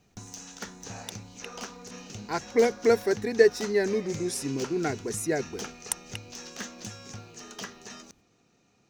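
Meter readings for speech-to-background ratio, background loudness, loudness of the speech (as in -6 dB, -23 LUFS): 14.0 dB, -41.0 LUFS, -27.0 LUFS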